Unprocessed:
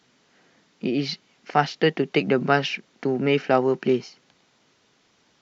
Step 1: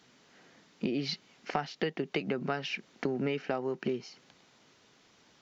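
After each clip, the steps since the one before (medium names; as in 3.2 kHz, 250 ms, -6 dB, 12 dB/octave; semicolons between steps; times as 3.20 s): compression 16:1, threshold -28 dBFS, peak gain reduction 16.5 dB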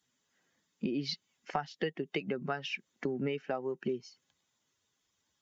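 expander on every frequency bin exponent 1.5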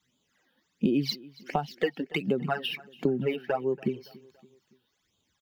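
median filter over 5 samples; phase shifter stages 12, 1.4 Hz, lowest notch 110–1900 Hz; feedback delay 283 ms, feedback 48%, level -22 dB; trim +8.5 dB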